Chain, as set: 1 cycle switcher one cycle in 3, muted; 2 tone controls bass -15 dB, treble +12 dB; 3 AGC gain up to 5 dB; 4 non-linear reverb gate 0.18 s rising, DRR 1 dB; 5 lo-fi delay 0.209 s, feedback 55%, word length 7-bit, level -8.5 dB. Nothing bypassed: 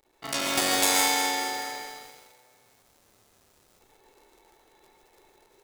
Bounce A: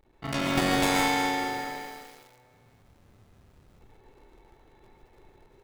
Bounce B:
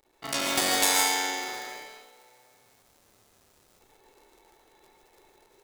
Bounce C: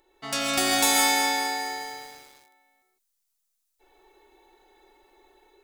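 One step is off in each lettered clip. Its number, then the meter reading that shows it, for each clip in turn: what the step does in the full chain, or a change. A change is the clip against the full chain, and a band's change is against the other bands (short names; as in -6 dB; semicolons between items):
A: 2, 125 Hz band +13.5 dB; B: 5, momentary loudness spread change +2 LU; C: 1, 250 Hz band +2.0 dB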